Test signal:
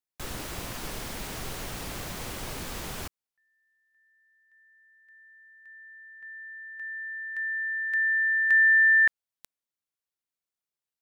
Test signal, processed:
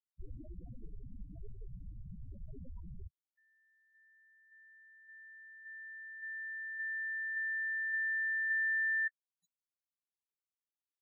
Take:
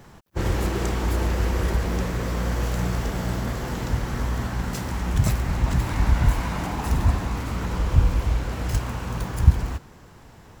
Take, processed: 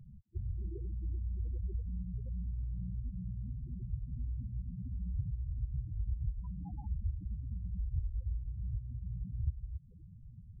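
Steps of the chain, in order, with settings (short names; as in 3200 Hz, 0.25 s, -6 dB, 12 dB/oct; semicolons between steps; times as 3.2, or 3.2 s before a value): compressor 3:1, threshold -37 dBFS; loudest bins only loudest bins 4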